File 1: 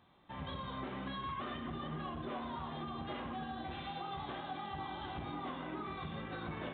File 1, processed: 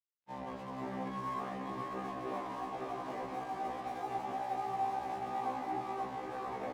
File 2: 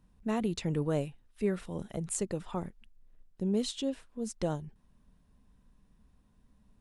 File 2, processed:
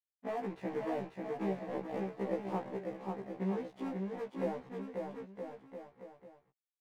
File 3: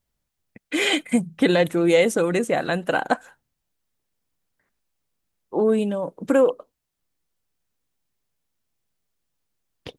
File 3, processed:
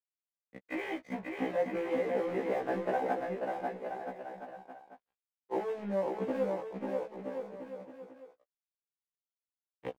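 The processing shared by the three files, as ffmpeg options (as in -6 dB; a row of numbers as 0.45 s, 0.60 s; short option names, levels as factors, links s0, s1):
-af "acompressor=threshold=0.0224:ratio=8,aresample=11025,acrusher=bits=2:mode=log:mix=0:aa=0.000001,aresample=44100,highpass=f=110:w=0.5412,highpass=f=110:w=1.3066,equalizer=f=140:t=q:w=4:g=-7,equalizer=f=230:t=q:w=4:g=-4,equalizer=f=500:t=q:w=4:g=3,equalizer=f=770:t=q:w=4:g=7,equalizer=f=1400:t=q:w=4:g=-9,lowpass=f=2000:w=0.5412,lowpass=f=2000:w=1.3066,aeval=exprs='sgn(val(0))*max(abs(val(0))-0.00178,0)':c=same,aecho=1:1:540|972|1318|1594|1815:0.631|0.398|0.251|0.158|0.1,afftfilt=real='re*1.73*eq(mod(b,3),0)':imag='im*1.73*eq(mod(b,3),0)':win_size=2048:overlap=0.75,volume=1.58"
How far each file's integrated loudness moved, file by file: +3.5 LU, -5.0 LU, -14.0 LU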